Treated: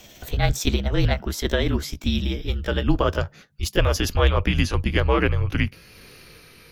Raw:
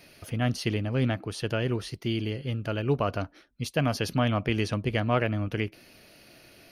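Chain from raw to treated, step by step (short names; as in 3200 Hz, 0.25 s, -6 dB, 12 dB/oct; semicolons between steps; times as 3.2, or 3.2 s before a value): gliding pitch shift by +5.5 st ending unshifted; frequency shift -200 Hz; gain +8 dB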